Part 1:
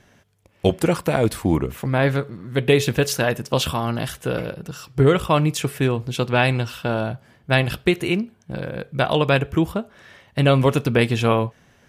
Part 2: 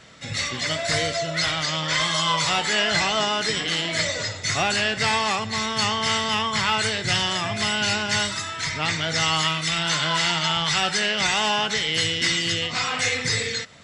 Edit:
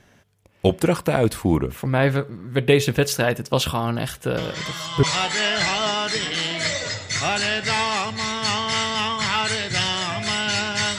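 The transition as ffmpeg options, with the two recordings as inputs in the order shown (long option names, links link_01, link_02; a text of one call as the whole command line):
ffmpeg -i cue0.wav -i cue1.wav -filter_complex "[1:a]asplit=2[link_01][link_02];[0:a]apad=whole_dur=10.98,atrim=end=10.98,atrim=end=5.032[link_03];[link_02]atrim=start=2.368:end=8.32[link_04];[link_01]atrim=start=1.71:end=2.37,asetpts=PTS-STARTPTS,volume=-8.5dB,afade=type=in:duration=0.004:curve=hsin,afade=type=out:start_time=0.656:duration=0.004:curve=hsin,adelay=192717S[link_05];[link_03][link_04]acrossfade=duration=0.004:curve1=hsin:curve2=hsin[link_06];[link_06][link_05]amix=inputs=2:normalize=0" out.wav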